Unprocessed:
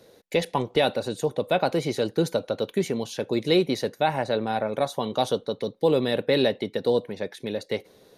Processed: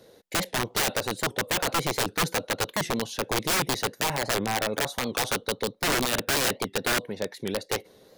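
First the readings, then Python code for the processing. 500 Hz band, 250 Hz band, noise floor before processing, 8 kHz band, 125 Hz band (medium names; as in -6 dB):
-7.0 dB, -5.5 dB, -56 dBFS, +13.5 dB, -2.5 dB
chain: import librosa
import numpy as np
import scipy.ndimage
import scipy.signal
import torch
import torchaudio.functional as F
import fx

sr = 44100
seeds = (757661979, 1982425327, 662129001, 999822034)

y = fx.notch(x, sr, hz=2400.0, q=18.0)
y = (np.mod(10.0 ** (19.0 / 20.0) * y + 1.0, 2.0) - 1.0) / 10.0 ** (19.0 / 20.0)
y = fx.record_warp(y, sr, rpm=78.0, depth_cents=160.0)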